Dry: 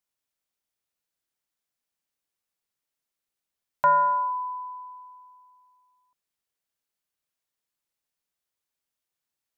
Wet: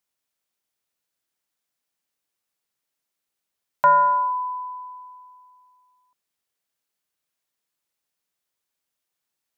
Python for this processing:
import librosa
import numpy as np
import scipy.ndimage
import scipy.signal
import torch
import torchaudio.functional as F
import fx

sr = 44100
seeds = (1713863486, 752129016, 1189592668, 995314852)

y = fx.low_shelf(x, sr, hz=70.0, db=-8.5)
y = F.gain(torch.from_numpy(y), 4.0).numpy()